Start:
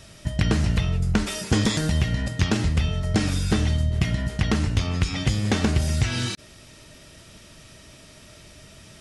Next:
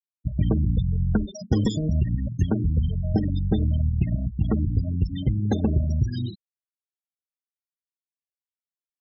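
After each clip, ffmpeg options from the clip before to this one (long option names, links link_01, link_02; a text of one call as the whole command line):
ffmpeg -i in.wav -af "equalizer=frequency=2000:width_type=o:width=1.9:gain=-5,afftfilt=real='re*gte(hypot(re,im),0.0891)':imag='im*gte(hypot(re,im),0.0891)':win_size=1024:overlap=0.75" out.wav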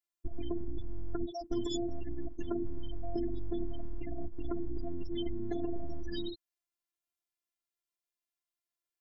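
ffmpeg -i in.wav -af "alimiter=limit=-20dB:level=0:latency=1:release=44,acompressor=threshold=-28dB:ratio=6,afftfilt=real='hypot(re,im)*cos(PI*b)':imag='0':win_size=512:overlap=0.75,volume=4.5dB" out.wav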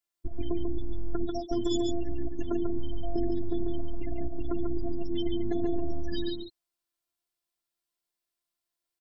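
ffmpeg -i in.wav -af "aecho=1:1:142:0.596,volume=3.5dB" out.wav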